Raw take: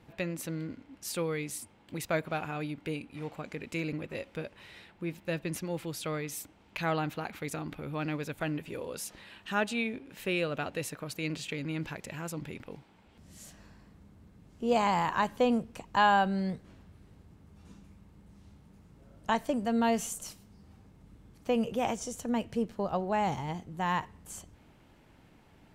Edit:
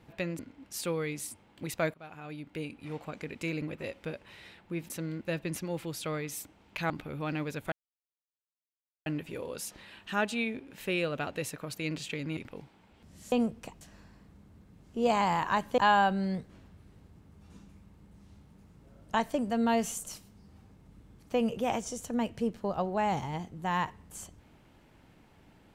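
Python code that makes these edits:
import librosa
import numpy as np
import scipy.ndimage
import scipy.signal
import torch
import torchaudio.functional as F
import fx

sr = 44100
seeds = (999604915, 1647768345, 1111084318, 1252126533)

y = fx.edit(x, sr, fx.move(start_s=0.39, length_s=0.31, to_s=5.21),
    fx.fade_in_from(start_s=2.25, length_s=0.88, floor_db=-21.0),
    fx.cut(start_s=6.9, length_s=0.73),
    fx.insert_silence(at_s=8.45, length_s=1.34),
    fx.cut(start_s=11.76, length_s=0.76),
    fx.move(start_s=15.44, length_s=0.49, to_s=13.47), tone=tone)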